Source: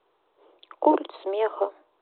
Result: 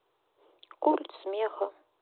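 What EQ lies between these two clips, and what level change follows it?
peaking EQ 110 Hz +11 dB 0.55 oct; treble shelf 3.1 kHz +6.5 dB; -6.0 dB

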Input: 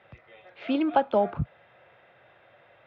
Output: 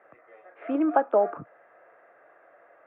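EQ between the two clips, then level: distance through air 81 m; cabinet simulation 300–2100 Hz, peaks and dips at 300 Hz +9 dB, 450 Hz +7 dB, 670 Hz +8 dB, 1.2 kHz +9 dB, 1.7 kHz +6 dB; -4.0 dB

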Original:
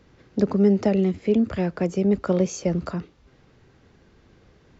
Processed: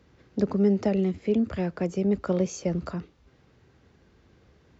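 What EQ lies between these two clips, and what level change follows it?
high-pass 49 Hz; peaking EQ 63 Hz +4.5 dB 0.77 oct; -4.0 dB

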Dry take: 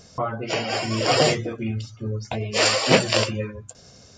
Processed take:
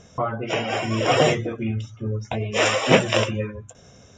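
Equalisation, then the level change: Butterworth band-stop 4.4 kHz, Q 4; distance through air 65 m; band-stop 5 kHz, Q 8; +1.5 dB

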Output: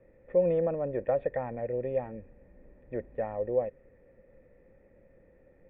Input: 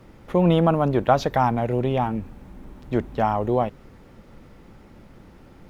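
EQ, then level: cascade formant filter e; distance through air 150 m; bass shelf 82 Hz +7 dB; +1.0 dB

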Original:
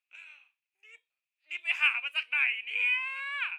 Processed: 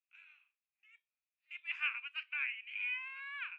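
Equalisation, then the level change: ladder high-pass 1 kHz, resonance 30%; distance through air 130 m; -3.5 dB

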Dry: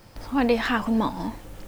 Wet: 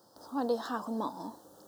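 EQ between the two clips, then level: high-pass 290 Hz 12 dB/octave; Butterworth band-stop 2.3 kHz, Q 0.83; -7.5 dB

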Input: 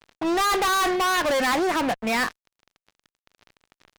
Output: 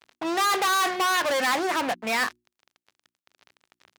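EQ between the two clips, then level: high-pass 74 Hz; bass shelf 360 Hz -9 dB; hum notches 60/120/180/240/300/360 Hz; 0.0 dB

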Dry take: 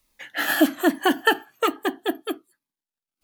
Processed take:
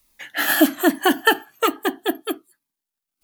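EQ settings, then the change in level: treble shelf 7.5 kHz +6.5 dB; band-stop 520 Hz, Q 12; +2.5 dB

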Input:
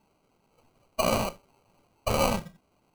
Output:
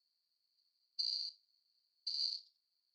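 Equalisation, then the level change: Butterworth band-pass 4.5 kHz, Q 8; differentiator; +9.5 dB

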